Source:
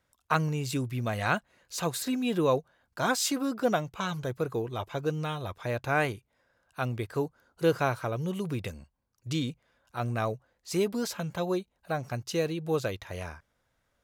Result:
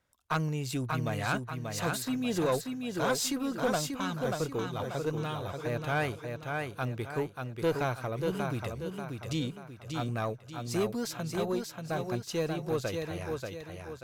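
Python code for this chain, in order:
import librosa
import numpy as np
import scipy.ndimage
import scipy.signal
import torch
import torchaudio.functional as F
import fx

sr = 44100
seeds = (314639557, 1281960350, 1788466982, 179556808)

p1 = x + fx.echo_feedback(x, sr, ms=586, feedback_pct=40, wet_db=-5.0, dry=0)
p2 = fx.tube_stage(p1, sr, drive_db=18.0, bias=0.3)
y = F.gain(torch.from_numpy(p2), -1.5).numpy()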